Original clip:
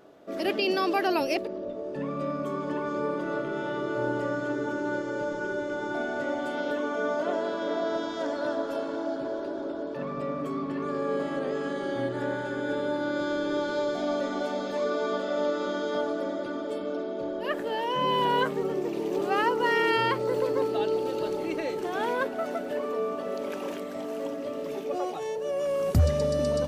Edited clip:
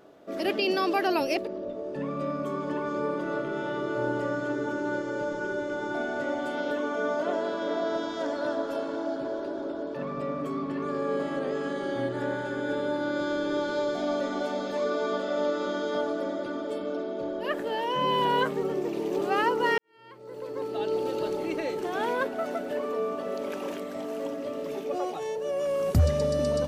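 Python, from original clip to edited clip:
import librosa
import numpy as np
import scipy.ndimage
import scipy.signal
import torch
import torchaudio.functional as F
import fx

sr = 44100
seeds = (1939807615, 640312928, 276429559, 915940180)

y = fx.edit(x, sr, fx.fade_in_span(start_s=19.78, length_s=1.23, curve='qua'), tone=tone)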